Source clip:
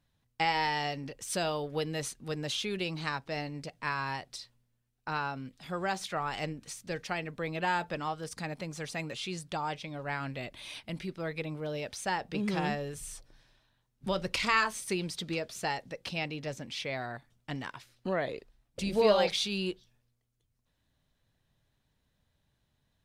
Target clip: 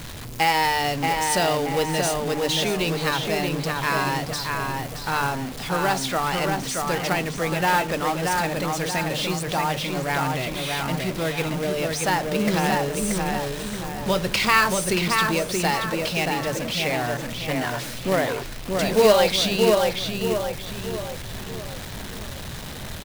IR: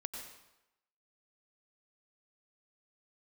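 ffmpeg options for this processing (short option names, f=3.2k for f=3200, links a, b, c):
-filter_complex "[0:a]aeval=exprs='val(0)+0.5*0.0141*sgn(val(0))':c=same,bandreject=f=50:t=h:w=6,bandreject=f=100:t=h:w=6,bandreject=f=150:t=h:w=6,bandreject=f=200:t=h:w=6,bandreject=f=250:t=h:w=6,bandreject=f=300:t=h:w=6,bandreject=f=350:t=h:w=6,asplit=2[a][b];[b]adelay=628,lowpass=f=3k:p=1,volume=-3dB,asplit=2[c][d];[d]adelay=628,lowpass=f=3k:p=1,volume=0.47,asplit=2[e][f];[f]adelay=628,lowpass=f=3k:p=1,volume=0.47,asplit=2[g][h];[h]adelay=628,lowpass=f=3k:p=1,volume=0.47,asplit=2[i][j];[j]adelay=628,lowpass=f=3k:p=1,volume=0.47,asplit=2[k][l];[l]adelay=628,lowpass=f=3k:p=1,volume=0.47[m];[c][e][g][i][k][m]amix=inputs=6:normalize=0[n];[a][n]amix=inputs=2:normalize=0,acrusher=bits=3:mode=log:mix=0:aa=0.000001,volume=7.5dB"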